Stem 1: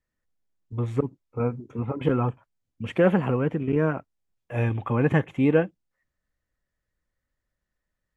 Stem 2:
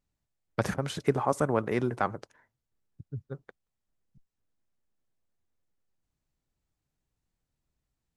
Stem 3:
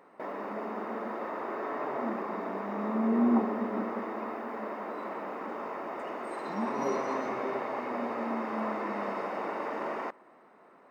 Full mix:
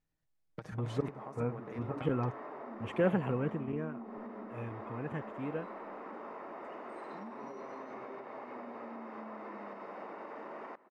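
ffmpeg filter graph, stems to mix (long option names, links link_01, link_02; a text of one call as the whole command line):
ffmpeg -i stem1.wav -i stem2.wav -i stem3.wav -filter_complex "[0:a]volume=-9dB,afade=type=out:start_time=3.49:duration=0.41:silence=0.334965[link_01];[1:a]aecho=1:1:6.4:0.53,acompressor=threshold=-31dB:ratio=2.5,volume=-3.5dB[link_02];[2:a]alimiter=level_in=3dB:limit=-24dB:level=0:latency=1:release=323,volume=-3dB,adelay=650,volume=-4.5dB[link_03];[link_02][link_03]amix=inputs=2:normalize=0,highshelf=frequency=6000:gain=-12,acompressor=threshold=-41dB:ratio=10,volume=0dB[link_04];[link_01][link_04]amix=inputs=2:normalize=0" out.wav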